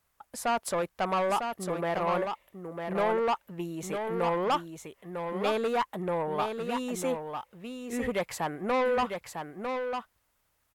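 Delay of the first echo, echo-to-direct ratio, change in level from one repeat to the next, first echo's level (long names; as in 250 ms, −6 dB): 951 ms, −6.0 dB, repeats not evenly spaced, −6.0 dB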